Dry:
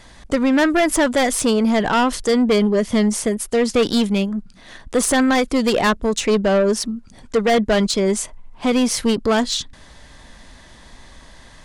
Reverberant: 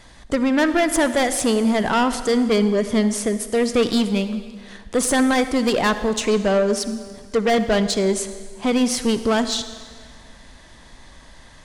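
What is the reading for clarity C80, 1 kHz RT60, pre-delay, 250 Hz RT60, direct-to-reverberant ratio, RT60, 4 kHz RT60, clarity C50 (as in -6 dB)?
12.0 dB, 1.8 s, 39 ms, 1.8 s, 11.0 dB, 1.8 s, 1.7 s, 11.0 dB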